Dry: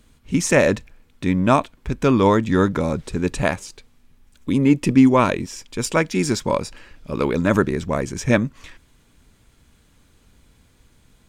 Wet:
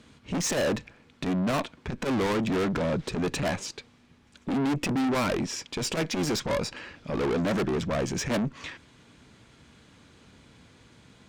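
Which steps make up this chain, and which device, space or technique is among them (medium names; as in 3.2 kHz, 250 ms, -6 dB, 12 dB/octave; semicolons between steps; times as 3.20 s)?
valve radio (band-pass 110–5700 Hz; valve stage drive 29 dB, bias 0.25; transformer saturation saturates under 120 Hz); trim +5.5 dB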